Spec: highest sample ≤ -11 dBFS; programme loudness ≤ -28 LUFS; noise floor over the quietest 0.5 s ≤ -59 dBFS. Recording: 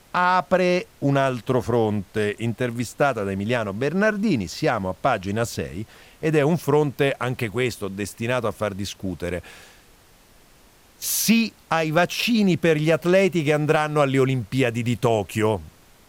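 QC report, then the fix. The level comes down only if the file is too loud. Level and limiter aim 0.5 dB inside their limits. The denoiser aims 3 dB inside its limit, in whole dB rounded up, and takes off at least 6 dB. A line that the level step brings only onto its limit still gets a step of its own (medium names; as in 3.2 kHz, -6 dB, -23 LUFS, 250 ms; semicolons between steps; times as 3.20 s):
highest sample -7.0 dBFS: fail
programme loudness -22.5 LUFS: fail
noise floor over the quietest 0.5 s -53 dBFS: fail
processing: noise reduction 6 dB, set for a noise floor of -53 dBFS; trim -6 dB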